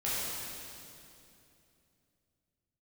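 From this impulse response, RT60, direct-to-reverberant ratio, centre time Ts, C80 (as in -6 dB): 2.8 s, -10.0 dB, 0.178 s, -2.0 dB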